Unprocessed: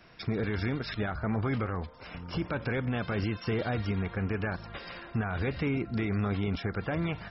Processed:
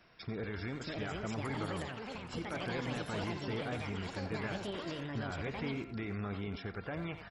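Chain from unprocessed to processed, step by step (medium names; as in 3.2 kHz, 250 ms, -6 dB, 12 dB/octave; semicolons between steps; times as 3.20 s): bass shelf 290 Hz -3 dB; reverse; upward compressor, threshold -42 dBFS; reverse; ever faster or slower copies 676 ms, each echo +6 st, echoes 2; speakerphone echo 90 ms, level -8 dB; trim -7.5 dB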